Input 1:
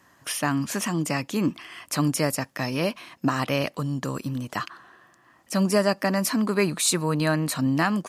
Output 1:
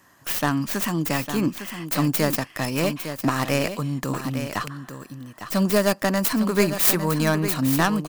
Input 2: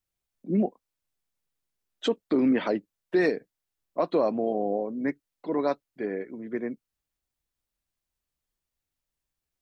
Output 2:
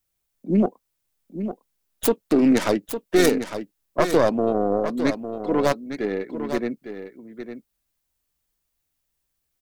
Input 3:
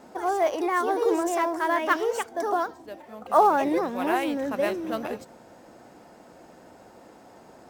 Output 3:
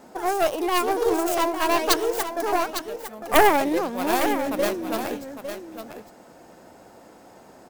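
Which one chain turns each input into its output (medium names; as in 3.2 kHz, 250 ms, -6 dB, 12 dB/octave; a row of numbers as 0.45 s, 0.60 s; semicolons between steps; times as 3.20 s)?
tracing distortion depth 0.49 ms; treble shelf 9.2 kHz +7.5 dB; on a send: delay 855 ms -9.5 dB; on the sum: normalise loudness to -23 LUFS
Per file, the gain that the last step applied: +1.0 dB, +5.5 dB, +1.0 dB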